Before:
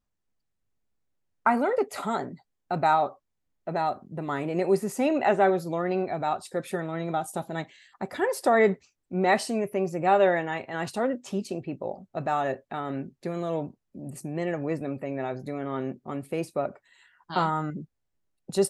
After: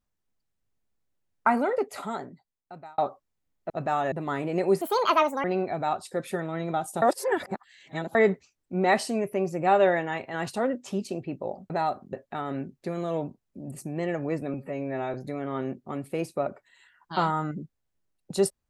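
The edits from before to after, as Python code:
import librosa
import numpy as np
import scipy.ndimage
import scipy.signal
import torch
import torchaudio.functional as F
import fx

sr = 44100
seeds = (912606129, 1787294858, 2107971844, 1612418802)

y = fx.edit(x, sr, fx.fade_out_span(start_s=1.54, length_s=1.44),
    fx.swap(start_s=3.7, length_s=0.43, other_s=12.1, other_length_s=0.42),
    fx.speed_span(start_s=4.82, length_s=1.02, speed=1.62),
    fx.reverse_span(start_s=7.42, length_s=1.13),
    fx.stretch_span(start_s=14.93, length_s=0.4, factor=1.5), tone=tone)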